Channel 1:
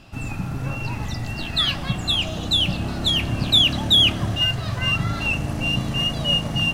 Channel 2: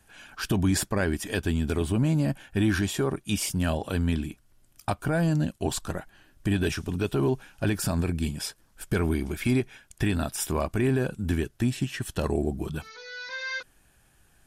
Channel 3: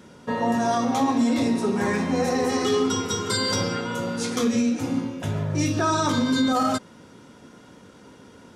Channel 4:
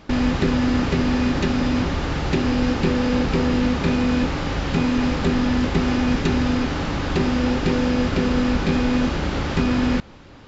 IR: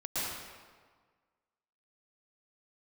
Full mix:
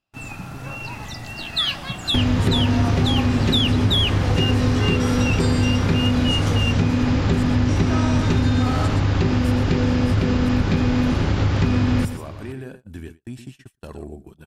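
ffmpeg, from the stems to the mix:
-filter_complex "[0:a]lowshelf=f=350:g=-8.5,volume=0dB[a];[1:a]adelay=1650,volume=-9.5dB,asplit=2[b][c];[c]volume=-9.5dB[d];[2:a]adelay=2100,volume=-3.5dB,asplit=2[e][f];[f]volume=-5.5dB[g];[3:a]equalizer=f=100:t=o:w=0.77:g=14,adelay=2050,volume=2dB,asplit=2[h][i];[i]volume=-14.5dB[j];[d][g][j]amix=inputs=3:normalize=0,aecho=0:1:120:1[k];[a][b][e][h][k]amix=inputs=5:normalize=0,agate=range=-31dB:threshold=-39dB:ratio=16:detection=peak,acompressor=threshold=-16dB:ratio=3"

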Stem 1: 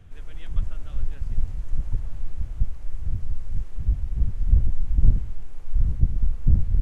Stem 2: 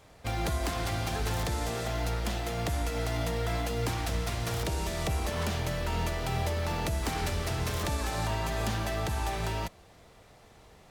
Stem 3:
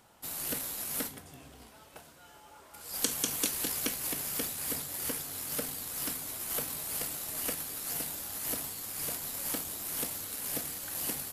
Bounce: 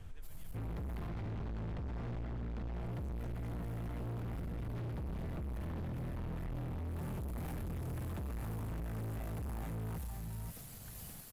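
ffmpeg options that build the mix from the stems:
-filter_complex "[0:a]alimiter=limit=-14.5dB:level=0:latency=1,volume=-1.5dB[a];[1:a]lowpass=2k,lowshelf=f=260:t=q:w=1.5:g=12.5,alimiter=limit=-16dB:level=0:latency=1:release=26,adelay=300,volume=-1dB,asplit=2[b][c];[c]volume=-10dB[d];[2:a]aeval=exprs='(tanh(56.2*val(0)+0.6)-tanh(0.6))/56.2':c=same,volume=-6dB[e];[a][e]amix=inputs=2:normalize=0,acompressor=threshold=-36dB:ratio=3,volume=0dB[f];[d]aecho=0:1:533:1[g];[b][f][g]amix=inputs=3:normalize=0,asoftclip=type=hard:threshold=-30.5dB,alimiter=level_in=14.5dB:limit=-24dB:level=0:latency=1:release=458,volume=-14.5dB"

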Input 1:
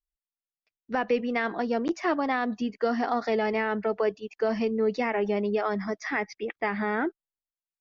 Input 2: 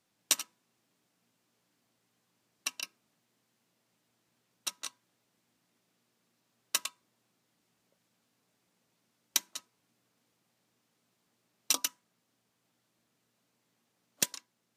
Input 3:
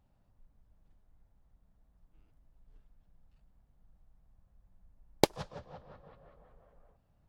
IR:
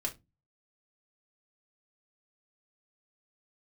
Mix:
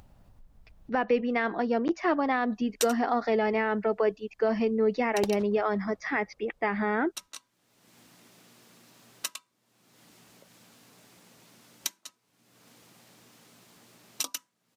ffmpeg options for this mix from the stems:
-filter_complex "[0:a]lowpass=f=3.6k:p=1,volume=0.5dB[a];[1:a]adelay=2500,volume=-3.5dB[b];[2:a]volume=-8dB[c];[a][b][c]amix=inputs=3:normalize=0,acompressor=mode=upward:threshold=-38dB:ratio=2.5"

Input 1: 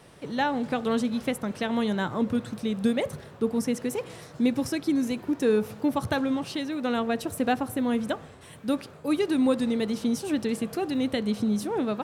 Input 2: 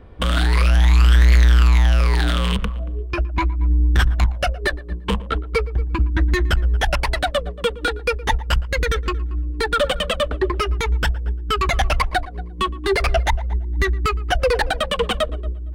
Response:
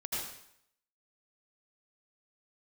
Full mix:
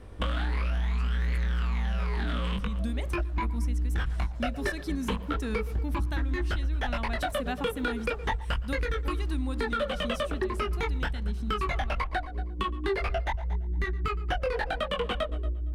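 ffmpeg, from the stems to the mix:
-filter_complex "[0:a]equalizer=f=450:t=o:w=0.78:g=-13.5,dynaudnorm=f=580:g=9:m=7.5dB,volume=-9.5dB[a];[1:a]acrossover=split=3500[b][c];[c]acompressor=threshold=-43dB:ratio=4:attack=1:release=60[d];[b][d]amix=inputs=2:normalize=0,flanger=delay=20:depth=2.1:speed=0.32,volume=0dB[e];[a][e]amix=inputs=2:normalize=0,acompressor=threshold=-26dB:ratio=6"

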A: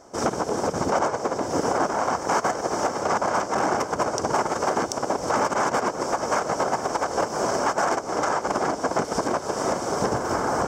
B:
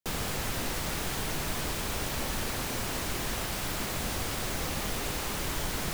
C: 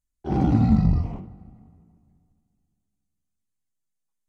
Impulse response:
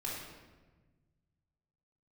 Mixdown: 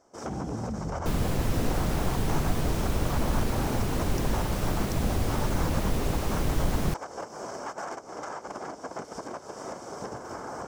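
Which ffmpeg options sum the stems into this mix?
-filter_complex "[0:a]volume=-13.5dB[a];[1:a]tiltshelf=f=650:g=7.5,adelay=1000,volume=2.5dB[b];[2:a]acompressor=threshold=-22dB:ratio=6,volume=-9dB[c];[a][b][c]amix=inputs=3:normalize=0"

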